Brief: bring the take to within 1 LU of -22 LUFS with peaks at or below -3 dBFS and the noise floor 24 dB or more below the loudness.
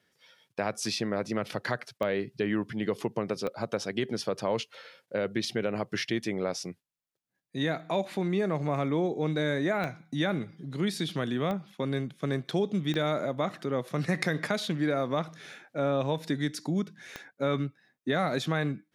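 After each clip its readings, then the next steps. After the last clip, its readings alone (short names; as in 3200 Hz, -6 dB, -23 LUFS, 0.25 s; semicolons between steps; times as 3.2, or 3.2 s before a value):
clicks 6; loudness -31.0 LUFS; peak -12.5 dBFS; loudness target -22.0 LUFS
-> de-click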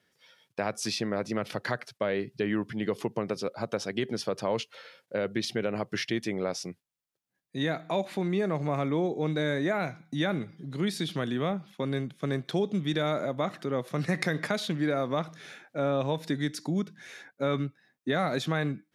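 clicks 0; loudness -31.0 LUFS; peak -12.5 dBFS; loudness target -22.0 LUFS
-> gain +9 dB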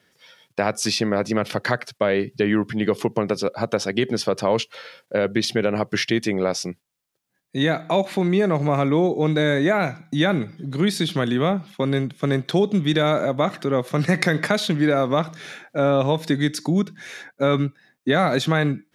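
loudness -22.0 LUFS; peak -3.5 dBFS; noise floor -73 dBFS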